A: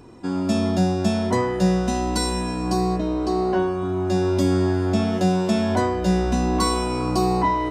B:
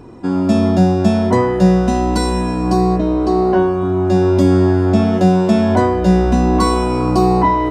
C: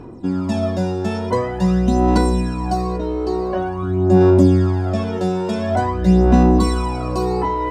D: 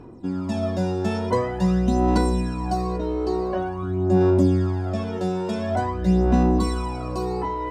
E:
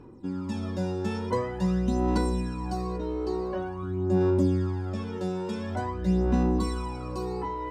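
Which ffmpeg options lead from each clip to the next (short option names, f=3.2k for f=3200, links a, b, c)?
-af "highshelf=f=2.3k:g=-9,volume=8dB"
-af "aphaser=in_gain=1:out_gain=1:delay=2.3:decay=0.62:speed=0.47:type=sinusoidal,volume=-6.5dB"
-af "dynaudnorm=f=180:g=9:m=11.5dB,volume=-6.5dB"
-af "asuperstop=centerf=680:order=4:qfactor=5.5,volume=-5.5dB"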